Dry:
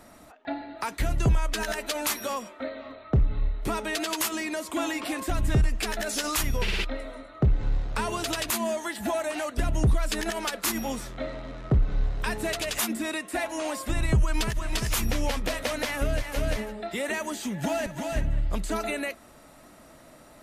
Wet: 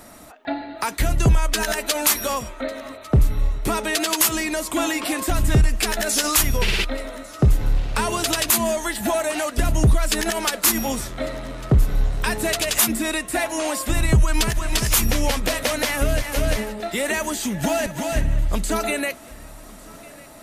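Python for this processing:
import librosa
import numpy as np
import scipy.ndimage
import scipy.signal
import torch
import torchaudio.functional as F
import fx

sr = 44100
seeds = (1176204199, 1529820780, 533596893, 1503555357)

y = fx.high_shelf(x, sr, hz=5900.0, db=7.0)
y = fx.echo_feedback(y, sr, ms=1150, feedback_pct=50, wet_db=-22.5)
y = F.gain(torch.from_numpy(y), 6.0).numpy()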